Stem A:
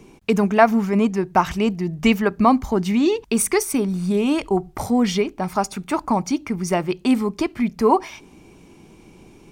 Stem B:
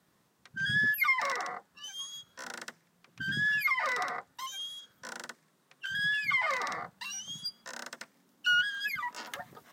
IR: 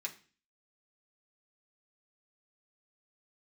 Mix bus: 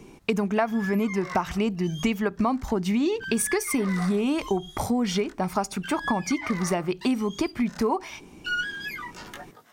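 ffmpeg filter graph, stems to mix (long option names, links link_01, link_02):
-filter_complex "[0:a]volume=-0.5dB,asplit=2[link_01][link_02];[1:a]asoftclip=type=tanh:threshold=-22.5dB,flanger=delay=18:depth=3.6:speed=0.3,volume=3dB[link_03];[link_02]apad=whole_len=429051[link_04];[link_03][link_04]sidechaincompress=threshold=-22dB:ratio=8:attack=16:release=276[link_05];[link_01][link_05]amix=inputs=2:normalize=0,acompressor=threshold=-21dB:ratio=6"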